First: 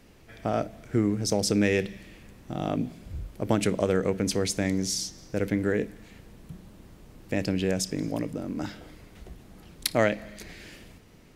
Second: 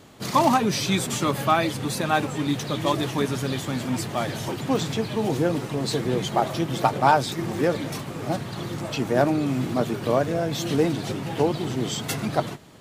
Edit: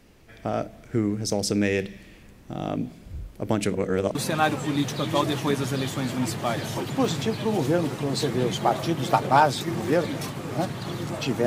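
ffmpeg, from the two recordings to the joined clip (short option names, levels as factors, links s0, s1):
-filter_complex "[0:a]apad=whole_dur=11.46,atrim=end=11.46,asplit=2[s0][s1];[s0]atrim=end=3.752[s2];[s1]atrim=start=3.748:end=4.152,asetpts=PTS-STARTPTS,areverse[s3];[1:a]atrim=start=1.858:end=9.17[s4];[s2][s3]acrossfade=d=0.004:c1=hsin:c2=hsin[s5];[s5][s4]acrossfade=d=0.004:c1=hsin:c2=hsin"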